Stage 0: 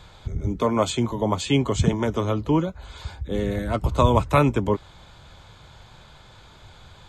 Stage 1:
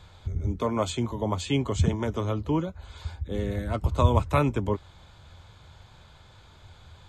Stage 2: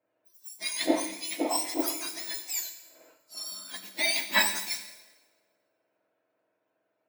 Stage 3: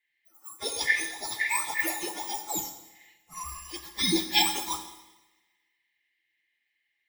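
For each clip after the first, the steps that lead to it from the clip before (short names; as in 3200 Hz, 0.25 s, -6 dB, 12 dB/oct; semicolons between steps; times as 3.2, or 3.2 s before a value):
bell 84 Hz +9 dB 0.46 oct; gain -5.5 dB
spectrum mirrored in octaves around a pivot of 1500 Hz; Schroeder reverb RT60 2.3 s, combs from 28 ms, DRR 5.5 dB; three-band expander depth 100%; gain -1.5 dB
four-band scrambler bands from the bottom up 4123; small resonant body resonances 330/840 Hz, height 13 dB, ringing for 50 ms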